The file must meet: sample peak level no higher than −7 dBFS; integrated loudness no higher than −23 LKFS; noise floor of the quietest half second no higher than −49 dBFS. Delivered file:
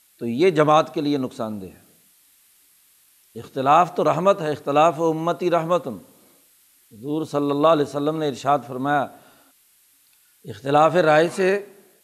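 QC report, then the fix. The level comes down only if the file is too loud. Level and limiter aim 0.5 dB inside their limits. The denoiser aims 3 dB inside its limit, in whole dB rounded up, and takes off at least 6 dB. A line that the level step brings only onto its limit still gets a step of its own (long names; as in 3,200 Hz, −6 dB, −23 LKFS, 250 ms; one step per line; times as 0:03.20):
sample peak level −4.5 dBFS: out of spec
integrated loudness −20.5 LKFS: out of spec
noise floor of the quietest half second −59 dBFS: in spec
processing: level −3 dB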